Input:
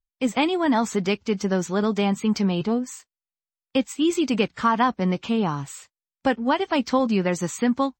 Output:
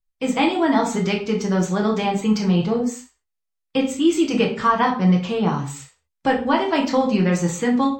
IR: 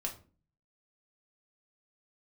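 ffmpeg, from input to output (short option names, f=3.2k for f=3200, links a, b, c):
-filter_complex "[1:a]atrim=start_sample=2205,afade=t=out:st=0.21:d=0.01,atrim=end_sample=9702,asetrate=31752,aresample=44100[a];[0:a][a]afir=irnorm=-1:irlink=0"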